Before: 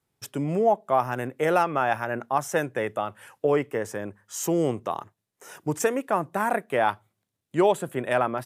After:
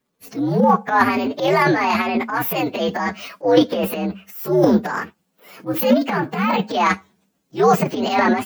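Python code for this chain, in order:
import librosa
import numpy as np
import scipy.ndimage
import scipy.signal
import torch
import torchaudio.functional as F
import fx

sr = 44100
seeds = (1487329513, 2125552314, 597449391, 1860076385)

y = fx.partial_stretch(x, sr, pct=124)
y = fx.transient(y, sr, attack_db=-6, sustain_db=11)
y = fx.low_shelf_res(y, sr, hz=140.0, db=-11.0, q=3.0)
y = y * 10.0 ** (8.5 / 20.0)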